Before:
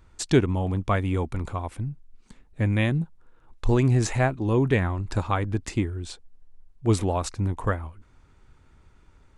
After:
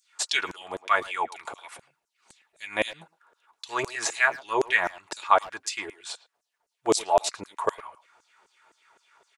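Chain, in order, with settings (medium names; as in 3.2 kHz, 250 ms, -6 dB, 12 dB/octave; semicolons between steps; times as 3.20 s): comb of notches 260 Hz; LFO high-pass saw down 3.9 Hz 470–7300 Hz; speakerphone echo 110 ms, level -17 dB; trim +4.5 dB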